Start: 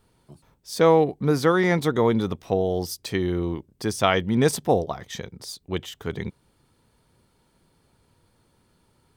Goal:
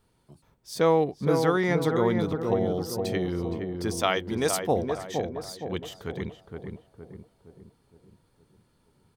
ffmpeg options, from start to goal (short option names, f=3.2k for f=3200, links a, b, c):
-filter_complex "[0:a]asettb=1/sr,asplit=3[a][b][c];[a]atrim=end=3.974[d];[b]atrim=start=3.97:end=4.63,asetpts=PTS-STARTPTS,afade=t=in:d=0.004:c=qsin,afade=t=out:st=0.656:d=0.004:c=qsin,bass=f=250:g=-10,treble=f=4k:g=5[e];[c]atrim=start=4.626[f];[d][e]acrossfade=d=0.004:c1=hsin:c2=qsin[g];[g][f]acrossfade=d=0.004:c1=qsin:c2=hsin,asplit=2[h][i];[i]adelay=466,lowpass=f=1.1k:p=1,volume=-4dB,asplit=2[j][k];[k]adelay=466,lowpass=f=1.1k:p=1,volume=0.51,asplit=2[l][m];[m]adelay=466,lowpass=f=1.1k:p=1,volume=0.51,asplit=2[n][o];[o]adelay=466,lowpass=f=1.1k:p=1,volume=0.51,asplit=2[p][q];[q]adelay=466,lowpass=f=1.1k:p=1,volume=0.51,asplit=2[r][s];[s]adelay=466,lowpass=f=1.1k:p=1,volume=0.51,asplit=2[t][u];[u]adelay=466,lowpass=f=1.1k:p=1,volume=0.51[v];[h][j][l][n][p][r][t][v]amix=inputs=8:normalize=0,volume=-4.5dB"